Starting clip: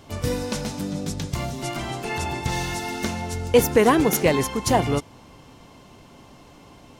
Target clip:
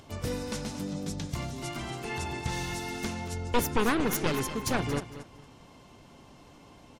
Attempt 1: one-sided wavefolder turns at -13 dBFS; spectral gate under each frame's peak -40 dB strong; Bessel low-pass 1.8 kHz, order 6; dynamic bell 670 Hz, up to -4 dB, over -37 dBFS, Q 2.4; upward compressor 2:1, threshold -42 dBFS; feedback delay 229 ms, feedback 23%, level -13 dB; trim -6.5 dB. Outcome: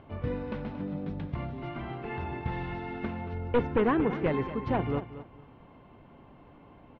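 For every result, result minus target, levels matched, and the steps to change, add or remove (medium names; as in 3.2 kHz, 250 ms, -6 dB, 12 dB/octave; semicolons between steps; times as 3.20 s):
one-sided wavefolder: distortion -9 dB; 2 kHz band -4.0 dB
change: one-sided wavefolder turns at -19 dBFS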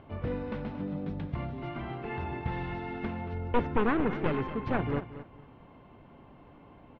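2 kHz band -2.0 dB
remove: Bessel low-pass 1.8 kHz, order 6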